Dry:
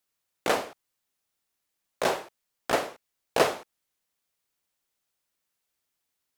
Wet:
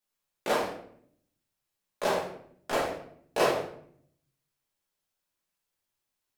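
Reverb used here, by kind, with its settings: shoebox room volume 110 m³, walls mixed, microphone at 1.4 m; gain -8 dB

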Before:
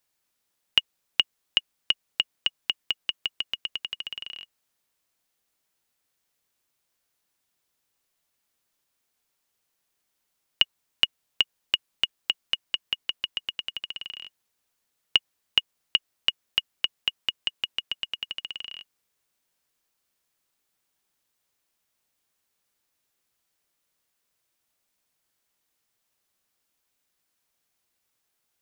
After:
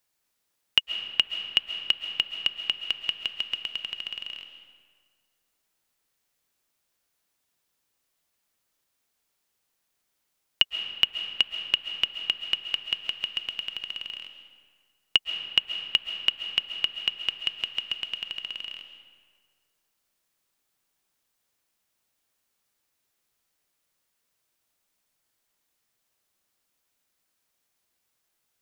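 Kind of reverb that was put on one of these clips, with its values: digital reverb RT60 1.8 s, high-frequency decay 0.65×, pre-delay 95 ms, DRR 7.5 dB

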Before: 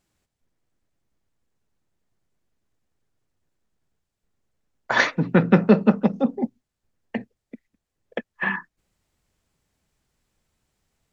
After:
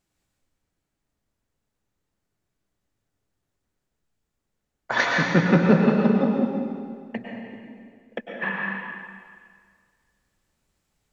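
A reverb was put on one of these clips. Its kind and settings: plate-style reverb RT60 1.9 s, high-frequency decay 0.95×, pre-delay 90 ms, DRR -1.5 dB; gain -3.5 dB

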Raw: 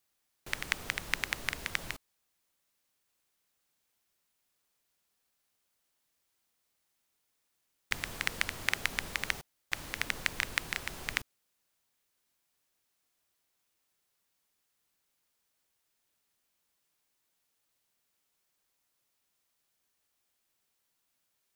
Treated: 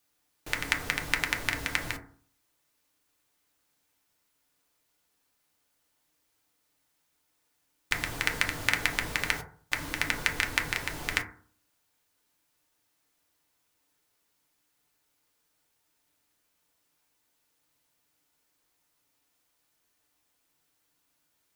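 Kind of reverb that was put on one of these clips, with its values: FDN reverb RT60 0.48 s, low-frequency decay 1.2×, high-frequency decay 0.3×, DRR 2 dB; gain +3.5 dB

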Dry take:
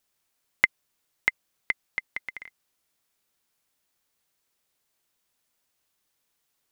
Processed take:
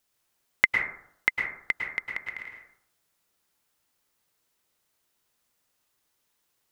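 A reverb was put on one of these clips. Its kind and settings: plate-style reverb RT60 0.67 s, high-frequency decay 0.35×, pre-delay 95 ms, DRR 1.5 dB

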